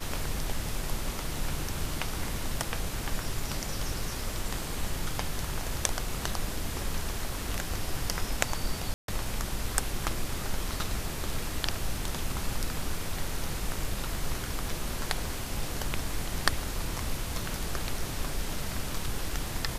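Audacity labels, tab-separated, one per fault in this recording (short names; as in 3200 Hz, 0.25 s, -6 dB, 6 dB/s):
8.940000	9.080000	gap 0.142 s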